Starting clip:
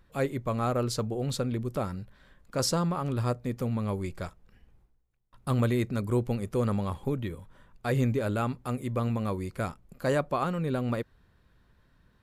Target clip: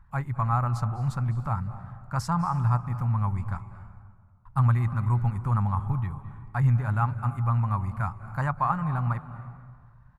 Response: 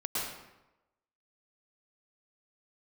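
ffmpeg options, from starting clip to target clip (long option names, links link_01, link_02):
-filter_complex "[0:a]firequalizer=gain_entry='entry(130,0);entry(260,-18);entry(470,-28);entry(850,2);entry(3300,-22);entry(6400,-18)':delay=0.05:min_phase=1,atempo=1.2,asplit=2[link_01][link_02];[1:a]atrim=start_sample=2205,asetrate=23373,aresample=44100[link_03];[link_02][link_03]afir=irnorm=-1:irlink=0,volume=-21.5dB[link_04];[link_01][link_04]amix=inputs=2:normalize=0,volume=6.5dB"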